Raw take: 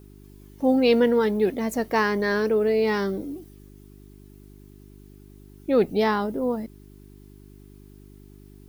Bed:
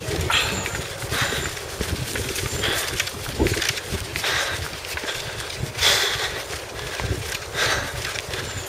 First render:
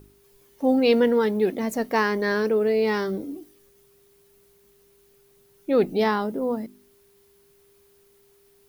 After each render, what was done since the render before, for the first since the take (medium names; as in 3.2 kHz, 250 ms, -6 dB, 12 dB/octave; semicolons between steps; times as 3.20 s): de-hum 50 Hz, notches 7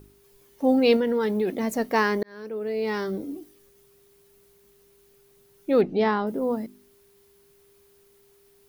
0.96–1.63 s: compression, threshold -20 dBFS; 2.23–3.31 s: fade in; 5.81–6.27 s: distance through air 160 m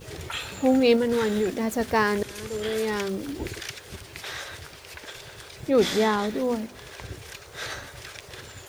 add bed -13 dB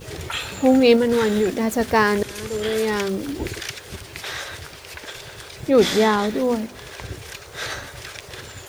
trim +5 dB